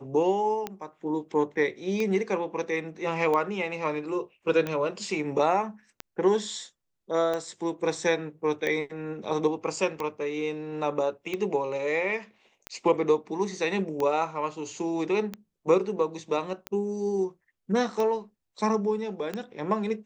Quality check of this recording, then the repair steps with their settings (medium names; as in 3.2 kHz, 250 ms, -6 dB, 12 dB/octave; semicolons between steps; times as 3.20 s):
tick 45 rpm -17 dBFS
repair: de-click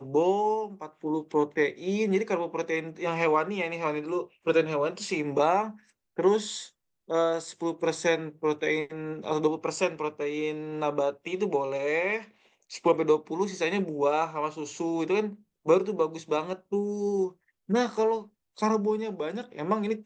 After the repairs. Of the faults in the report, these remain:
nothing left